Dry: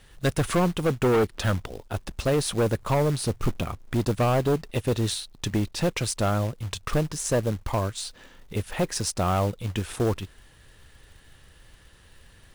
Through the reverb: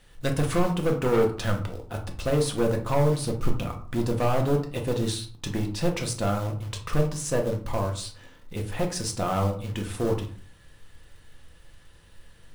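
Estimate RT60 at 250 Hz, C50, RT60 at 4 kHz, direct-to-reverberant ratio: 0.50 s, 9.5 dB, 0.25 s, 2.0 dB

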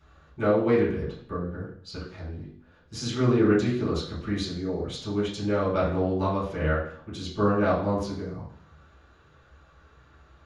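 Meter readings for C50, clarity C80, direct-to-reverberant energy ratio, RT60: 4.5 dB, 8.5 dB, -10.0 dB, 0.60 s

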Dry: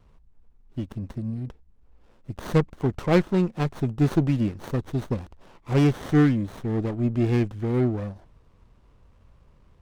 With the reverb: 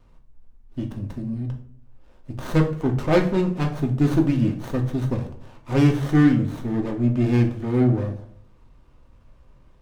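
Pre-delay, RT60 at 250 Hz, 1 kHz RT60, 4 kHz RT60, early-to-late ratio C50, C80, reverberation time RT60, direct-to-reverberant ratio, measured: 3 ms, 0.75 s, 0.50 s, 0.40 s, 10.0 dB, 14.5 dB, 0.60 s, 2.0 dB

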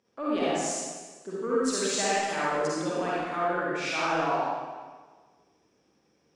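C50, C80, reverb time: -6.5 dB, -1.5 dB, 1.4 s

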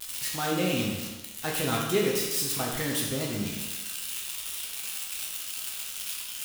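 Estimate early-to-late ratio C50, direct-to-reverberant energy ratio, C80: 2.0 dB, -3.5 dB, 4.0 dB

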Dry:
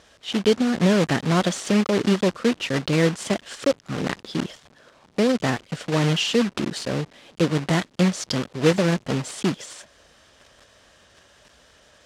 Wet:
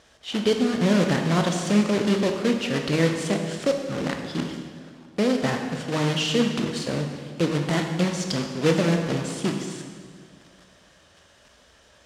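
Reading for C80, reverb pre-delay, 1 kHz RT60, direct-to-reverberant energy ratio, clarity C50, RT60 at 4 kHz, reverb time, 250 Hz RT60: 6.5 dB, 15 ms, 1.7 s, 3.5 dB, 5.0 dB, 1.5 s, 1.8 s, 2.2 s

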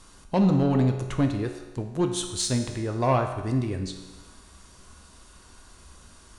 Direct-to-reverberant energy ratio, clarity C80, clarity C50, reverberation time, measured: 4.0 dB, 8.5 dB, 7.0 dB, 1.2 s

